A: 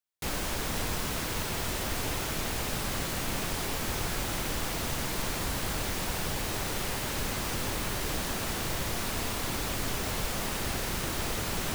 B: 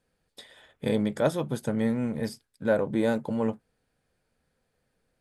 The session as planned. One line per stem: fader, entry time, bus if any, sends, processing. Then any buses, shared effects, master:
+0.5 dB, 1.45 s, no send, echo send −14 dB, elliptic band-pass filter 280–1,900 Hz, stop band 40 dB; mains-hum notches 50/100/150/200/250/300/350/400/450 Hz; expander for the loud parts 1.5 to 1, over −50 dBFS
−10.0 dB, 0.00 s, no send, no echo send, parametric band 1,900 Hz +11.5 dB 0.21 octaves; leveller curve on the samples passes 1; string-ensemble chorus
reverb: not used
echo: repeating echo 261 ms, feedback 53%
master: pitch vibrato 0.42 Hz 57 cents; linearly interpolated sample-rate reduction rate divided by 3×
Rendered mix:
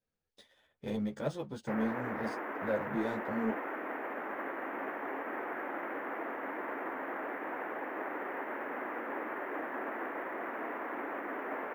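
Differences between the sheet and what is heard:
stem B: missing parametric band 1,900 Hz +11.5 dB 0.21 octaves
master: missing pitch vibrato 0.42 Hz 57 cents

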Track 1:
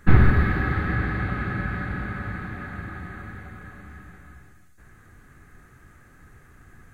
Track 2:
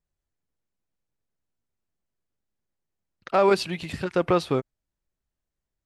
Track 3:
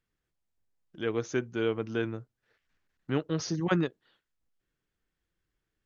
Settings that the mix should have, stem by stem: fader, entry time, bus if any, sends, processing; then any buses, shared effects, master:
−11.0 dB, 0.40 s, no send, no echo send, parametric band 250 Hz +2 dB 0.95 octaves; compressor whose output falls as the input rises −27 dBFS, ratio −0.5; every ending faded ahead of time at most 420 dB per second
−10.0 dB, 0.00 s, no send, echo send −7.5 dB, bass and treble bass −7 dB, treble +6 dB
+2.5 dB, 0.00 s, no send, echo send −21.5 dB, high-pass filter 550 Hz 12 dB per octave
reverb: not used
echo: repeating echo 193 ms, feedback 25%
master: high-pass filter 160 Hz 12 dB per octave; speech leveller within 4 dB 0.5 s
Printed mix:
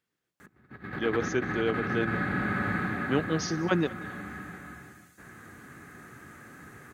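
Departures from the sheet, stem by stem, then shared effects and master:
stem 1 −11.0 dB → −3.0 dB
stem 2: muted
stem 3: missing high-pass filter 550 Hz 12 dB per octave

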